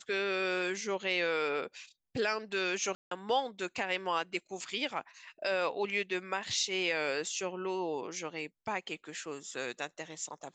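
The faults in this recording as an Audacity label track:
2.950000	3.110000	dropout 163 ms

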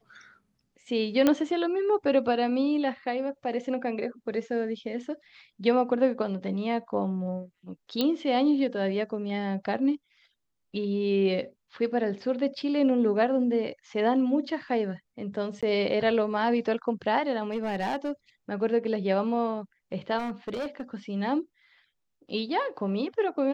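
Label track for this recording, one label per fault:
1.270000	1.270000	pop -9 dBFS
8.010000	8.010000	pop -13 dBFS
15.610000	15.630000	dropout 16 ms
17.520000	18.110000	clipped -24.5 dBFS
20.180000	20.820000	clipped -28.5 dBFS

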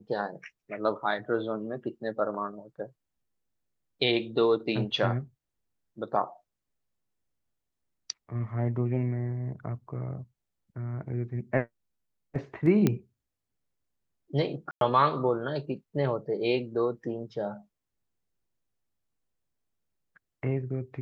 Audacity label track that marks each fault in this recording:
12.870000	12.870000	pop -11 dBFS
14.710000	14.810000	dropout 102 ms

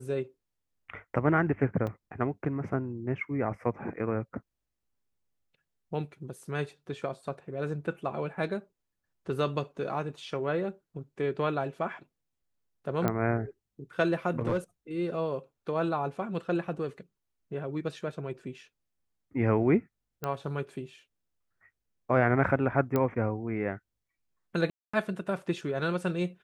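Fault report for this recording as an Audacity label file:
1.870000	1.870000	dropout 2.8 ms
13.080000	13.080000	pop -14 dBFS
14.390000	14.580000	clipped -23 dBFS
20.240000	20.240000	pop -19 dBFS
22.960000	22.960000	pop -15 dBFS
24.700000	24.930000	dropout 235 ms

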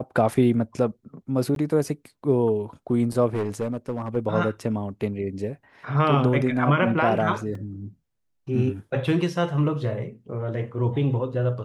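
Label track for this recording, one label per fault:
1.550000	1.560000	dropout 12 ms
3.340000	4.170000	clipped -21.5 dBFS
7.550000	7.550000	dropout 2.9 ms

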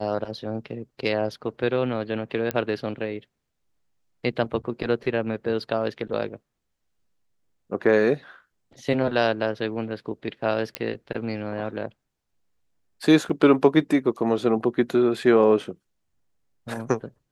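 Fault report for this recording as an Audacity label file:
2.510000	2.510000	pop -10 dBFS
10.750000	10.750000	pop -10 dBFS
13.290000	13.300000	dropout 5.7 ms

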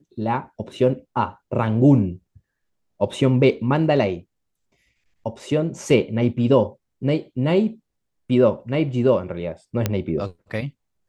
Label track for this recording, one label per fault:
9.860000	9.860000	pop -6 dBFS

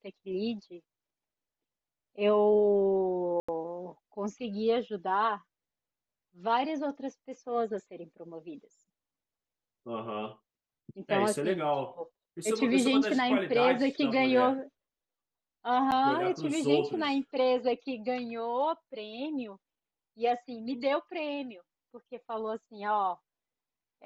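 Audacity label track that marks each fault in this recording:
3.400000	3.480000	dropout 85 ms
15.910000	15.920000	dropout 9.3 ms

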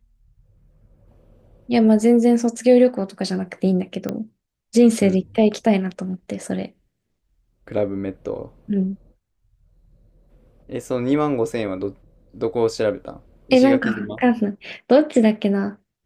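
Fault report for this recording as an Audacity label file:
4.090000	4.090000	pop -12 dBFS

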